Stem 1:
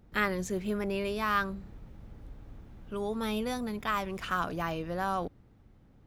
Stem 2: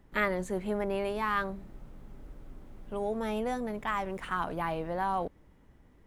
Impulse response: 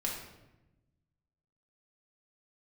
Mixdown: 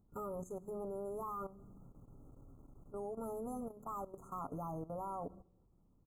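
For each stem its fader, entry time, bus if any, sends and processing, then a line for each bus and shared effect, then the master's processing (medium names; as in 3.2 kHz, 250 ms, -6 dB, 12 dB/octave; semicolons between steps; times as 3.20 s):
-0.5 dB, 0.00 s, send -18.5 dB, peaking EQ 1.6 kHz -13.5 dB 2.1 oct; auto duck -9 dB, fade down 0.40 s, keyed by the second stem
-7.5 dB, 7.7 ms, no send, none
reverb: on, RT60 1.0 s, pre-delay 4 ms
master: FFT band-reject 1.4–6.2 kHz; level held to a coarse grid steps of 14 dB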